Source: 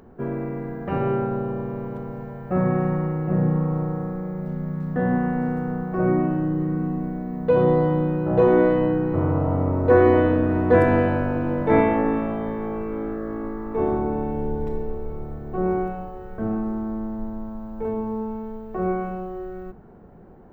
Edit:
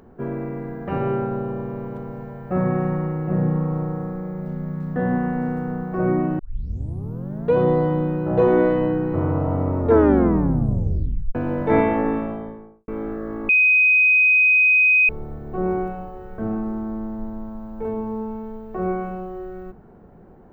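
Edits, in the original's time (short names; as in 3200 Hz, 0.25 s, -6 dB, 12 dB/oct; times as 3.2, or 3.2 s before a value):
6.39 tape start 1.15 s
9.78 tape stop 1.57 s
12.07–12.88 studio fade out
13.49–15.09 bleep 2510 Hz -12 dBFS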